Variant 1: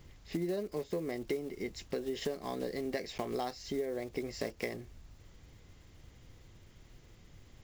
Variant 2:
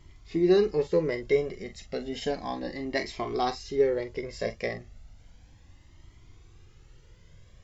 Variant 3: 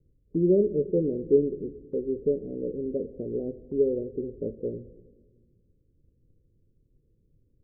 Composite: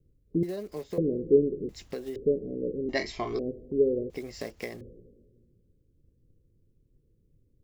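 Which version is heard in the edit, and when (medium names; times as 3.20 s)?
3
0.43–0.98 s: from 1
1.69–2.16 s: from 1
2.89–3.39 s: from 2
4.10–4.81 s: from 1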